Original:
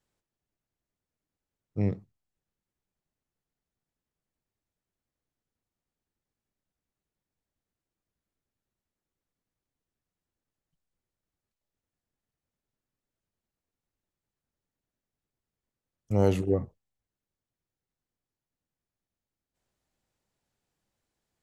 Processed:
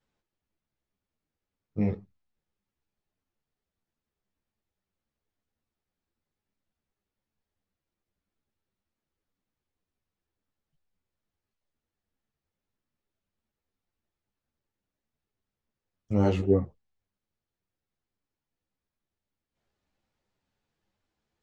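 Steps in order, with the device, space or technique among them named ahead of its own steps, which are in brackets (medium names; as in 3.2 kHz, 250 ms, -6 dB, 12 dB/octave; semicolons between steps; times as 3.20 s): string-machine ensemble chorus (three-phase chorus; low-pass 4.8 kHz 12 dB/octave); trim +4.5 dB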